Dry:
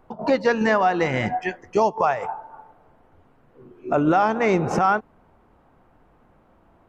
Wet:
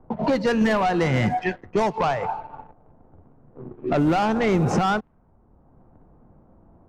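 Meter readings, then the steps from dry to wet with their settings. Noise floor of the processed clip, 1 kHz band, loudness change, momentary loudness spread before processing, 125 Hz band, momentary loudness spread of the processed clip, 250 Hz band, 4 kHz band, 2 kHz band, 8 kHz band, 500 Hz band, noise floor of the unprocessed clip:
-57 dBFS, -2.5 dB, -1.0 dB, 9 LU, +5.0 dB, 10 LU, +2.0 dB, +3.0 dB, -2.5 dB, no reading, -2.0 dB, -58 dBFS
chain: waveshaping leveller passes 2; tone controls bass +8 dB, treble +3 dB; level-controlled noise filter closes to 850 Hz, open at -9 dBFS; three bands compressed up and down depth 40%; trim -7 dB

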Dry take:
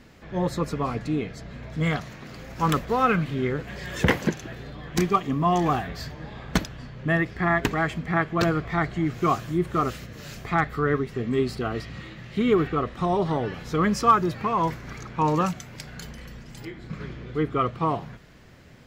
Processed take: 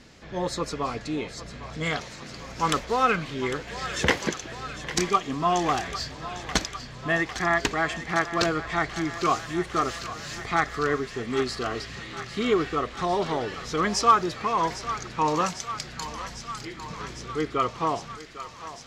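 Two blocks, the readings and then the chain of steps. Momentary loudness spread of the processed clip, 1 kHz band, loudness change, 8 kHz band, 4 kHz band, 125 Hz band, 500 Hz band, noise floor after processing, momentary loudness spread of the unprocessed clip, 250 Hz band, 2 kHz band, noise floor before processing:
12 LU, 0.0 dB, -2.0 dB, +7.0 dB, +5.5 dB, -7.5 dB, -1.5 dB, -42 dBFS, 17 LU, -4.5 dB, +1.0 dB, -45 dBFS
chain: dynamic bell 150 Hz, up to -7 dB, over -39 dBFS, Q 0.84; low-pass 5.7 kHz 12 dB/octave; tone controls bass -2 dB, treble +13 dB; on a send: thinning echo 802 ms, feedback 83%, high-pass 650 Hz, level -12 dB

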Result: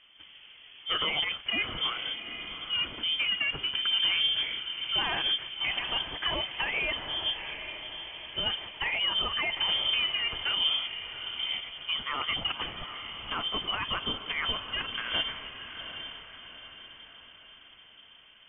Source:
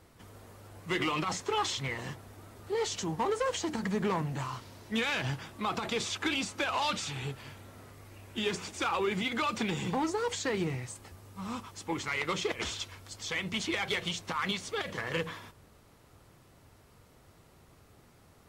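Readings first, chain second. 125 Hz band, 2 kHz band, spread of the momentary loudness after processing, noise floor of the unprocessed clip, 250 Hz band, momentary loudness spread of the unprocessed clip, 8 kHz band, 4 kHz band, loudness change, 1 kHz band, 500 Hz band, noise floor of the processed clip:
-10.0 dB, +3.5 dB, 14 LU, -60 dBFS, -11.5 dB, 16 LU, under -40 dB, +11.5 dB, +4.0 dB, -3.0 dB, -9.0 dB, -54 dBFS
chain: resonant low shelf 100 Hz -12.5 dB, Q 3; on a send: echo that smears into a reverb 784 ms, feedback 48%, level -9 dB; on the sum: frequency inversion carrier 3.3 kHz

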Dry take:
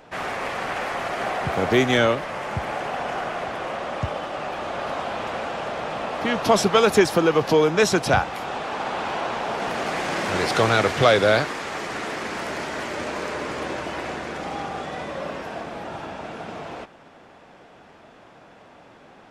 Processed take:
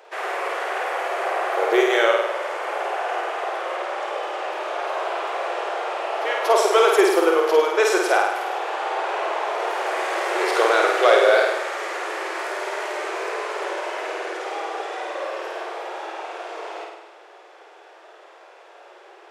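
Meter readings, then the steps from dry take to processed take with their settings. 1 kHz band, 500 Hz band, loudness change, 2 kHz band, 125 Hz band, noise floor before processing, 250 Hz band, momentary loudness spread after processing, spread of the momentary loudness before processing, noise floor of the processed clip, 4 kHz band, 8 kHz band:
+2.5 dB, +2.0 dB, +1.5 dB, +2.0 dB, under -40 dB, -49 dBFS, -4.0 dB, 13 LU, 14 LU, -47 dBFS, -1.0 dB, -0.5 dB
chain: dynamic bell 4.7 kHz, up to -6 dB, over -41 dBFS, Q 0.9; brick-wall FIR high-pass 330 Hz; on a send: flutter echo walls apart 8.8 m, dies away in 0.94 s

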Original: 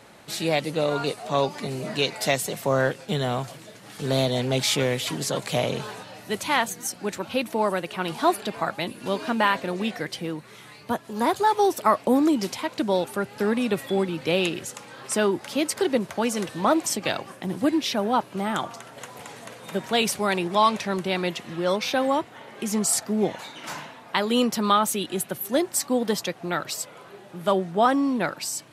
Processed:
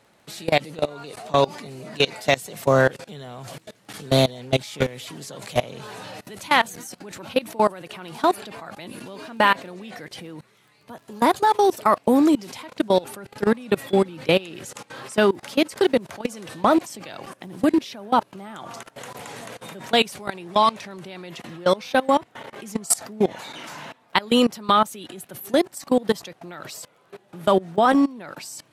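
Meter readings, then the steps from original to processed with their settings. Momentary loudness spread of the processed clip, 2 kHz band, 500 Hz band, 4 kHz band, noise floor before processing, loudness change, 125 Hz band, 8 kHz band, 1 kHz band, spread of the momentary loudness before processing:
19 LU, +2.0 dB, +2.5 dB, +0.5 dB, -47 dBFS, +3.0 dB, 0.0 dB, -3.5 dB, +2.5 dB, 13 LU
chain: level held to a coarse grid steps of 22 dB; crackle 15 per s -52 dBFS; trim +6.5 dB

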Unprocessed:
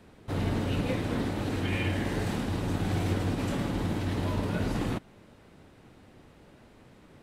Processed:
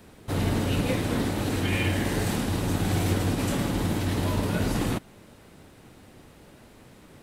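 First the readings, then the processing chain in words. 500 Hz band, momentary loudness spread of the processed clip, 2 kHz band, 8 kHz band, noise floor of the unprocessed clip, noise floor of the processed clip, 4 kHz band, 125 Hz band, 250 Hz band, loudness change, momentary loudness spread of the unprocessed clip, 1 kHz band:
+3.5 dB, 2 LU, +4.5 dB, +10.5 dB, -56 dBFS, -52 dBFS, +6.0 dB, +3.5 dB, +3.5 dB, +4.0 dB, 2 LU, +3.5 dB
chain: treble shelf 6.7 kHz +12 dB; trim +3.5 dB

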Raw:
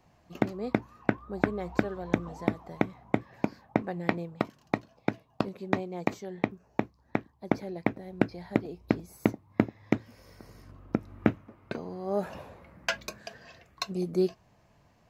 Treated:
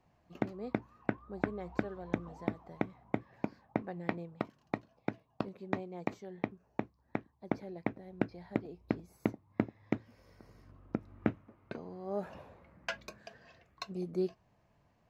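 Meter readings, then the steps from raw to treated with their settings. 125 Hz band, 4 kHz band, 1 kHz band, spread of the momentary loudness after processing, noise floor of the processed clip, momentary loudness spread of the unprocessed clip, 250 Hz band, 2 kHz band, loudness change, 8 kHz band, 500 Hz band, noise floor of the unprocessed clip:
-7.0 dB, -10.0 dB, -7.5 dB, 10 LU, -72 dBFS, 9 LU, -7.0 dB, -8.0 dB, -7.0 dB, no reading, -7.0 dB, -64 dBFS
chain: treble shelf 5.1 kHz -9 dB; trim -7 dB

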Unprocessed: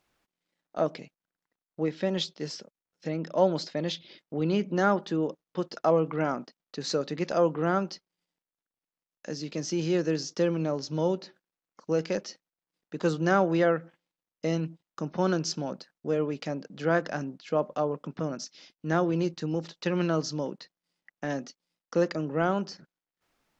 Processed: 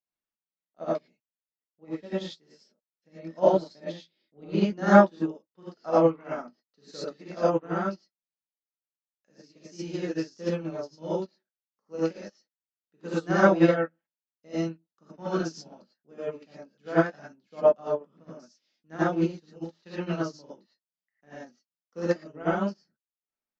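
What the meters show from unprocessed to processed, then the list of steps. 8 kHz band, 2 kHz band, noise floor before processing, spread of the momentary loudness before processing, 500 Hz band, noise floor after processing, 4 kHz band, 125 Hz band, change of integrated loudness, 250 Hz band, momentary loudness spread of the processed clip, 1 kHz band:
no reading, +1.0 dB, under -85 dBFS, 13 LU, +1.0 dB, under -85 dBFS, -7.5 dB, -1.5 dB, +2.5 dB, +1.0 dB, 22 LU, +1.5 dB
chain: gated-style reverb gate 130 ms rising, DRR -8 dB; upward expansion 2.5:1, over -31 dBFS

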